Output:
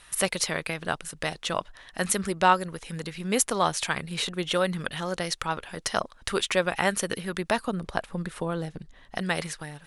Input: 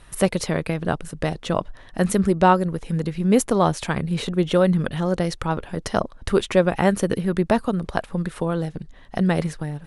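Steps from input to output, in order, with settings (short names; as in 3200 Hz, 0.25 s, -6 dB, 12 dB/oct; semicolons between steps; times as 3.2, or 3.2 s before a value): tilt shelf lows -8.5 dB, about 800 Hz, from 7.65 s lows -3 dB, from 9.16 s lows -9 dB; gain -4.5 dB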